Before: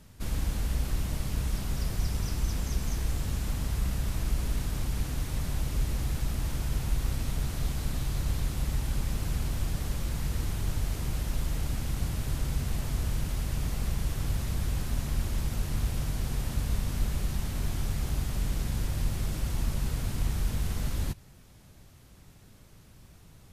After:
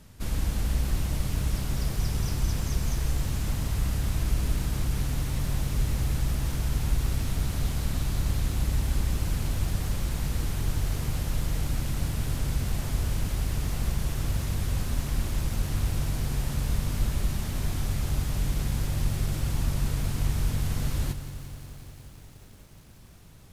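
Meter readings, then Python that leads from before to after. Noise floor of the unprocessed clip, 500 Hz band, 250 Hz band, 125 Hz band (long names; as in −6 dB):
−54 dBFS, +2.5 dB, +3.0 dB, +3.5 dB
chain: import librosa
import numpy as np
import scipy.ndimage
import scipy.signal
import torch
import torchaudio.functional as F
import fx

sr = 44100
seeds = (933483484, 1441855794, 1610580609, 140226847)

y = fx.echo_crushed(x, sr, ms=178, feedback_pct=80, bits=9, wet_db=-12)
y = y * 10.0 ** (2.0 / 20.0)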